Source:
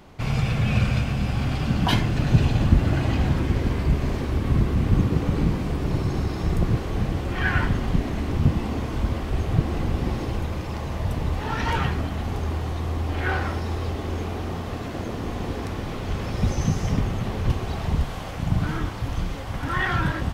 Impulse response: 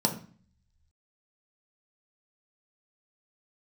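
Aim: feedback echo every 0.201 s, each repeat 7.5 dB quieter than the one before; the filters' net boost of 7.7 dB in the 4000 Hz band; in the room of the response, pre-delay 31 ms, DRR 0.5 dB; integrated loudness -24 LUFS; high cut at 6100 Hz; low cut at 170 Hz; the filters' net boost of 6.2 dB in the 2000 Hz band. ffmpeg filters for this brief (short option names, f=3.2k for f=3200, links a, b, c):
-filter_complex "[0:a]highpass=170,lowpass=6.1k,equalizer=f=2k:t=o:g=6,equalizer=f=4k:t=o:g=8.5,aecho=1:1:201|402|603|804|1005:0.422|0.177|0.0744|0.0312|0.0131,asplit=2[a][b];[1:a]atrim=start_sample=2205,adelay=31[c];[b][c]afir=irnorm=-1:irlink=0,volume=-9.5dB[d];[a][d]amix=inputs=2:normalize=0,volume=-4dB"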